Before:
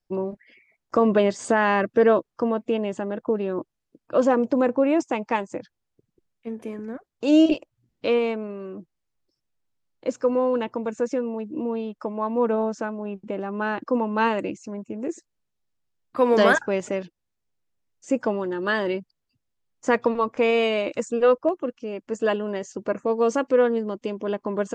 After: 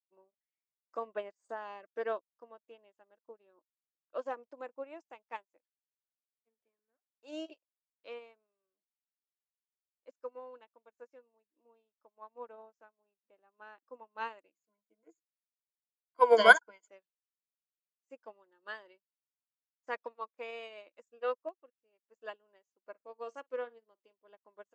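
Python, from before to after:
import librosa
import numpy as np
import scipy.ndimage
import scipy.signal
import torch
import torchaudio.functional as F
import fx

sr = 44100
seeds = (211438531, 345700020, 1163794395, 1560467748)

y = fx.peak_eq(x, sr, hz=fx.line((1.06, 6000.0), (1.82, 1400.0)), db=-12.0, octaves=0.77, at=(1.06, 1.82), fade=0.02)
y = fx.ripple_eq(y, sr, per_octave=1.8, db=17, at=(14.55, 16.88))
y = fx.doubler(y, sr, ms=50.0, db=-13, at=(22.82, 24.13))
y = scipy.signal.sosfilt(scipy.signal.butter(2, 570.0, 'highpass', fs=sr, output='sos'), y)
y = fx.upward_expand(y, sr, threshold_db=-43.0, expansion=2.5)
y = y * librosa.db_to_amplitude(-1.0)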